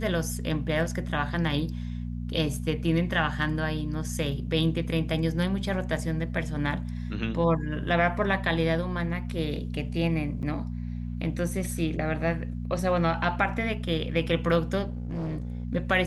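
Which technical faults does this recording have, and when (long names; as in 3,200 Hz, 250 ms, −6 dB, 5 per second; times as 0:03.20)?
mains hum 60 Hz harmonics 4 −33 dBFS
0:10.42–0:10.43: drop-out 8.7 ms
0:14.88–0:15.65: clipping −28.5 dBFS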